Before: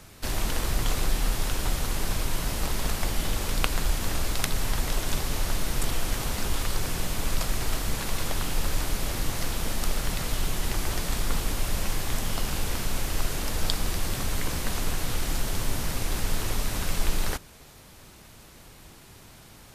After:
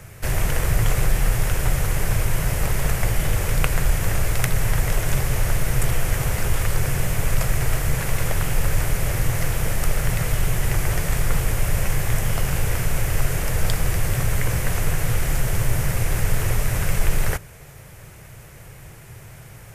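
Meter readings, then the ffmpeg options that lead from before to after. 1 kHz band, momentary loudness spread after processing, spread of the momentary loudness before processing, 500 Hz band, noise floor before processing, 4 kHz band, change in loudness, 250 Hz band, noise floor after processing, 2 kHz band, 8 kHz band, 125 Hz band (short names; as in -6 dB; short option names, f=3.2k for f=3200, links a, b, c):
+3.5 dB, 16 LU, 17 LU, +6.0 dB, -50 dBFS, -1.5 dB, +6.0 dB, +4.0 dB, -42 dBFS, +6.5 dB, +3.5 dB, +10.5 dB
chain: -af "acontrast=49,equalizer=f=125:t=o:w=1:g=11,equalizer=f=250:t=o:w=1:g=-11,equalizer=f=500:t=o:w=1:g=4,equalizer=f=1k:t=o:w=1:g=-4,equalizer=f=2k:t=o:w=1:g=5,equalizer=f=4k:t=o:w=1:g=-11"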